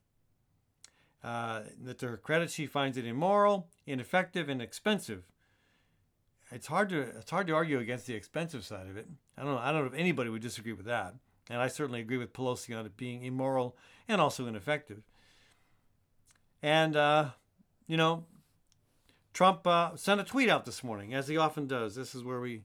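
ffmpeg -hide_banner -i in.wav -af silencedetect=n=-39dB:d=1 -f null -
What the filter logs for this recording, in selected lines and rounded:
silence_start: 5.18
silence_end: 6.53 | silence_duration: 1.35
silence_start: 14.93
silence_end: 16.63 | silence_duration: 1.70
silence_start: 18.20
silence_end: 19.35 | silence_duration: 1.15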